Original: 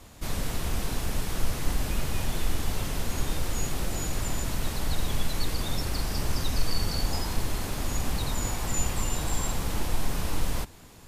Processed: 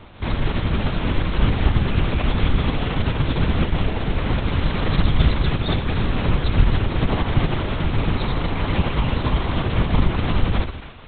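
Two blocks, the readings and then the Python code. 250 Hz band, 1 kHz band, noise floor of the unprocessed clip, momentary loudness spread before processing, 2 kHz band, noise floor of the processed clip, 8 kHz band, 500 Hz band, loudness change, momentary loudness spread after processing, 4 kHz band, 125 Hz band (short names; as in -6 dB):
+12.0 dB, +9.0 dB, -48 dBFS, 3 LU, +9.5 dB, -31 dBFS, under -40 dB, +10.5 dB, +9.5 dB, 4 LU, +5.0 dB, +12.5 dB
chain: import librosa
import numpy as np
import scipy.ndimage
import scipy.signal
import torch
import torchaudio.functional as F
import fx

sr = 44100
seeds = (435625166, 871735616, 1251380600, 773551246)

p1 = x + fx.echo_split(x, sr, split_hz=950.0, low_ms=94, high_ms=269, feedback_pct=52, wet_db=-10.5, dry=0)
p2 = fx.lpc_vocoder(p1, sr, seeds[0], excitation='whisper', order=8)
y = F.gain(torch.from_numpy(p2), 6.5).numpy()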